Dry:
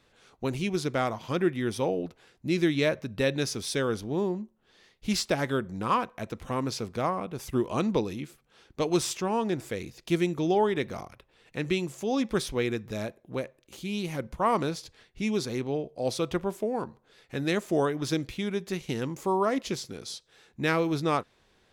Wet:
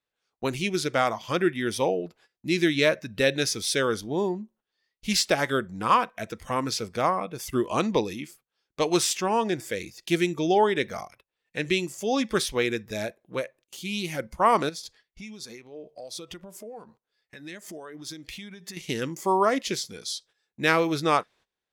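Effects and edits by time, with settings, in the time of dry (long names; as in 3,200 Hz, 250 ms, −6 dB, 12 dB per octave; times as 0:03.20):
0:14.69–0:18.77: downward compressor 12 to 1, threshold −37 dBFS
whole clip: noise reduction from a noise print of the clip's start 10 dB; noise gate −57 dBFS, range −18 dB; low-shelf EQ 360 Hz −9 dB; level +6.5 dB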